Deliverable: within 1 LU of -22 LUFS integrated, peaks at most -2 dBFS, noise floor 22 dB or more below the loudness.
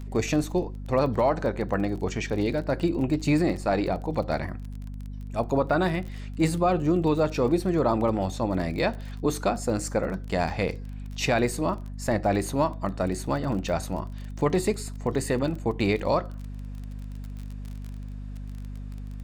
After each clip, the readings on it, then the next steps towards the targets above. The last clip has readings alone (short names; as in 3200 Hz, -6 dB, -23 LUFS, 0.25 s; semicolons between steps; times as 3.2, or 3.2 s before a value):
ticks 27/s; hum 50 Hz; harmonics up to 250 Hz; hum level -34 dBFS; loudness -26.5 LUFS; peak -12.5 dBFS; loudness target -22.0 LUFS
-> de-click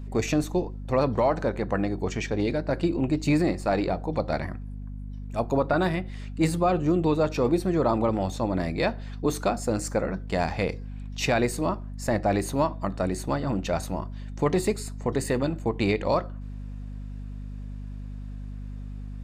ticks 0/s; hum 50 Hz; harmonics up to 250 Hz; hum level -34 dBFS
-> de-hum 50 Hz, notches 5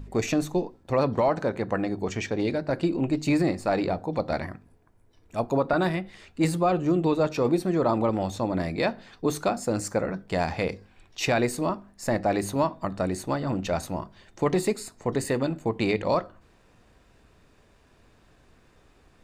hum none; loudness -27.0 LUFS; peak -12.0 dBFS; loudness target -22.0 LUFS
-> gain +5 dB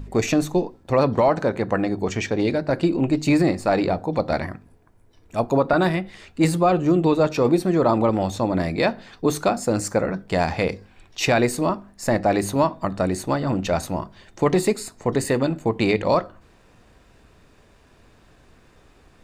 loudness -22.0 LUFS; peak -7.0 dBFS; noise floor -55 dBFS